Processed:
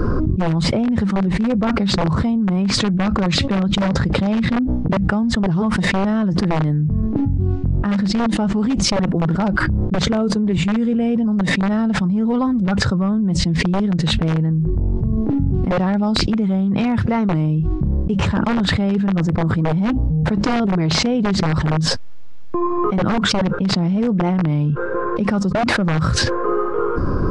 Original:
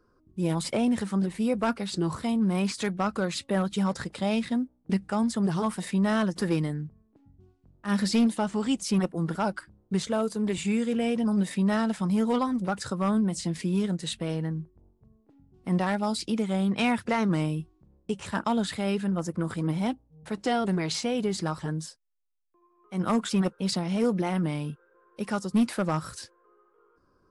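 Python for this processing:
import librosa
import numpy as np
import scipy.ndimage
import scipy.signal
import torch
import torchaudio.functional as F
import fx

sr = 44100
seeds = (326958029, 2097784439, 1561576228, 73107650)

y = fx.bass_treble(x, sr, bass_db=8, treble_db=9)
y = fx.rider(y, sr, range_db=4, speed_s=0.5)
y = (np.mod(10.0 ** (15.0 / 20.0) * y + 1.0, 2.0) - 1.0) / 10.0 ** (15.0 / 20.0)
y = fx.spacing_loss(y, sr, db_at_10k=39)
y = fx.env_flatten(y, sr, amount_pct=100)
y = y * librosa.db_to_amplitude(2.5)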